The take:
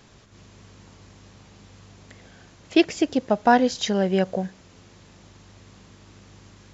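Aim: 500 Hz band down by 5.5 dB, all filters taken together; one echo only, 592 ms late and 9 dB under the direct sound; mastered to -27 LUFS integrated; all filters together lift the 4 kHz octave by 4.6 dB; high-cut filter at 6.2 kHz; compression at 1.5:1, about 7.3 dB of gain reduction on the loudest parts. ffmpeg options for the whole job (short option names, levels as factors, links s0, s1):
-af "lowpass=6200,equalizer=f=500:t=o:g=-8,equalizer=f=4000:t=o:g=6.5,acompressor=threshold=0.02:ratio=1.5,aecho=1:1:592:0.355,volume=1.41"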